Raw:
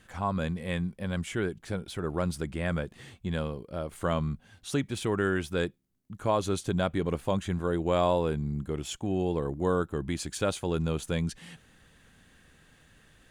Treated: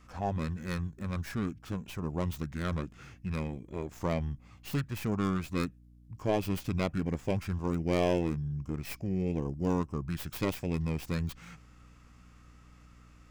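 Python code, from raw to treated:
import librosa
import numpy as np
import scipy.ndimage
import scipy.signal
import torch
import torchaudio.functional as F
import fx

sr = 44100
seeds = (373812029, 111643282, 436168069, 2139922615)

y = fx.tracing_dist(x, sr, depth_ms=0.17)
y = fx.formant_shift(y, sr, semitones=-5)
y = fx.add_hum(y, sr, base_hz=60, snr_db=23)
y = F.gain(torch.from_numpy(y), -2.5).numpy()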